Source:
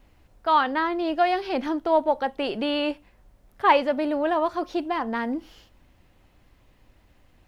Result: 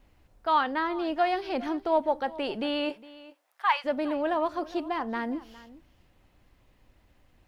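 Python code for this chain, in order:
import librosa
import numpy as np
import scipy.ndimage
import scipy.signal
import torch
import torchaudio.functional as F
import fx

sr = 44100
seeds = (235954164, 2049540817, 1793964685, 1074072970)

y = fx.highpass(x, sr, hz=fx.line((2.89, 300.0), (3.84, 1100.0)), slope=24, at=(2.89, 3.84), fade=0.02)
y = y + 10.0 ** (-19.0 / 20.0) * np.pad(y, (int(409 * sr / 1000.0), 0))[:len(y)]
y = F.gain(torch.from_numpy(y), -4.0).numpy()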